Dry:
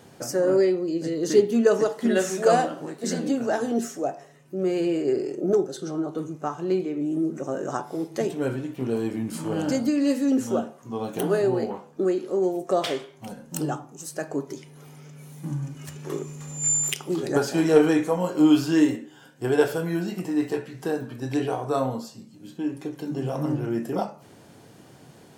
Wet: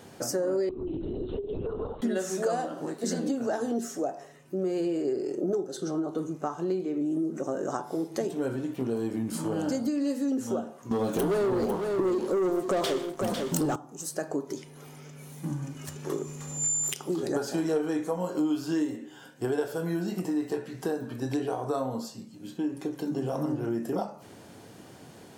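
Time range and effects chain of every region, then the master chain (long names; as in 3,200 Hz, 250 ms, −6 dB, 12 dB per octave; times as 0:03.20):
0:00.69–0:02.02: phaser with its sweep stopped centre 380 Hz, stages 8 + downward compressor 12 to 1, threshold −30 dBFS + linear-prediction vocoder at 8 kHz whisper
0:10.91–0:13.76: parametric band 770 Hz −4 dB 0.23 octaves + leveller curve on the samples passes 3 + single-tap delay 500 ms −10.5 dB
whole clip: parametric band 140 Hz −6.5 dB 0.26 octaves; downward compressor 4 to 1, threshold −28 dBFS; dynamic equaliser 2,400 Hz, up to −6 dB, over −54 dBFS, Q 1.5; level +1.5 dB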